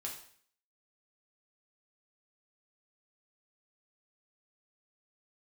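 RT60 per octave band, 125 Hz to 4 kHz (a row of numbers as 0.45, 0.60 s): 0.60, 0.60, 0.55, 0.55, 0.55, 0.55 s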